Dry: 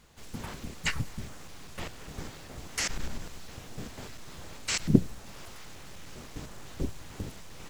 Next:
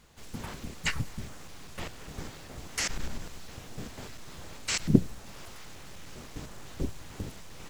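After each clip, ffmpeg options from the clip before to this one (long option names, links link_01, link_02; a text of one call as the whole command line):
ffmpeg -i in.wav -af anull out.wav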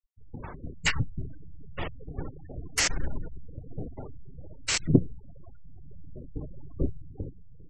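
ffmpeg -i in.wav -af "afftfilt=real='re*gte(hypot(re,im),0.0141)':imag='im*gte(hypot(re,im),0.0141)':win_size=1024:overlap=0.75,dynaudnorm=framelen=120:gausssize=13:maxgain=6dB,equalizer=frequency=210:width_type=o:width=0.21:gain=-12.5" out.wav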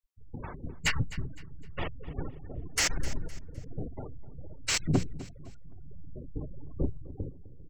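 ffmpeg -i in.wav -af "asoftclip=type=tanh:threshold=-18dB,aecho=1:1:256|512|768:0.141|0.0494|0.0173" out.wav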